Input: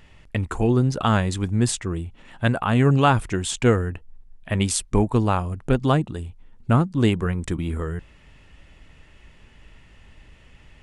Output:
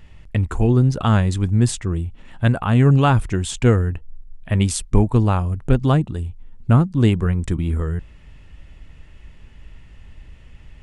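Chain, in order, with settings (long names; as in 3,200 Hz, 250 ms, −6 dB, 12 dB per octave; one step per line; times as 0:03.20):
low-shelf EQ 170 Hz +10 dB
level −1 dB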